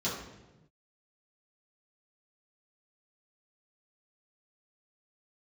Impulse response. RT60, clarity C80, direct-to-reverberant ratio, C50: 1.0 s, 5.5 dB, -9.5 dB, 2.5 dB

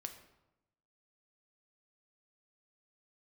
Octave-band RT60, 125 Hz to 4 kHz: 1.2, 1.1, 0.95, 0.90, 0.70, 0.60 s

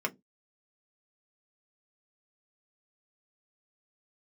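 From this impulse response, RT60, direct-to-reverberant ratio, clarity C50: not exponential, 1.5 dB, 27.0 dB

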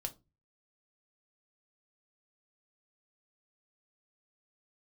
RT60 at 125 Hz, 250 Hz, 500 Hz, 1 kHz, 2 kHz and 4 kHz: 0.55, 0.40, 0.30, 0.25, 0.15, 0.20 s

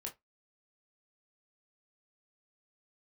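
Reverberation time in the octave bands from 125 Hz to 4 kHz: 0.20, 0.15, 0.15, 0.15, 0.15, 0.15 s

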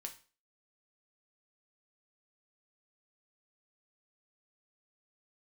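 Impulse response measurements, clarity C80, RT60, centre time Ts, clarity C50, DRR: 18.0 dB, 0.40 s, 10 ms, 12.5 dB, 3.5 dB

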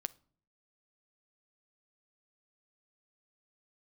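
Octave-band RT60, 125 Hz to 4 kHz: 0.75, 0.70, 0.55, 0.45, 0.35, 0.35 s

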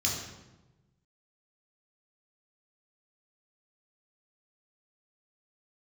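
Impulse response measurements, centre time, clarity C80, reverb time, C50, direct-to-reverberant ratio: 51 ms, 5.5 dB, 1.1 s, 3.0 dB, -3.0 dB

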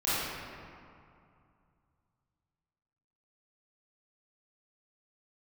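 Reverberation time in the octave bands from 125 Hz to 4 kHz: 3.3, 2.7, 2.3, 2.5, 2.0, 1.3 s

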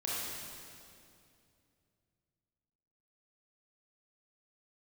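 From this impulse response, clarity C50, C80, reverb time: -4.0 dB, -1.5 dB, 2.5 s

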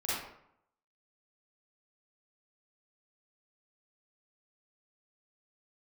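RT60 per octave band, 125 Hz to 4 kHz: 0.75, 0.75, 0.70, 0.75, 0.60, 0.45 s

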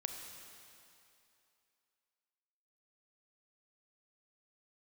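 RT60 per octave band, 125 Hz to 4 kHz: 2.3, 2.4, 2.7, 2.8, 2.6, 2.6 s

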